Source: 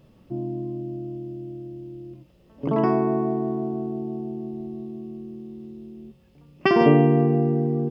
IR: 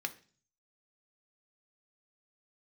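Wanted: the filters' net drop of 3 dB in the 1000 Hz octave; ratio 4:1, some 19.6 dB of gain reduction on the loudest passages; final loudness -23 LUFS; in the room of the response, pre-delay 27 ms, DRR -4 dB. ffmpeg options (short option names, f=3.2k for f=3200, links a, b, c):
-filter_complex "[0:a]equalizer=f=1k:t=o:g=-4.5,acompressor=threshold=-37dB:ratio=4,asplit=2[a][b];[1:a]atrim=start_sample=2205,adelay=27[c];[b][c]afir=irnorm=-1:irlink=0,volume=2dB[d];[a][d]amix=inputs=2:normalize=0,volume=12.5dB"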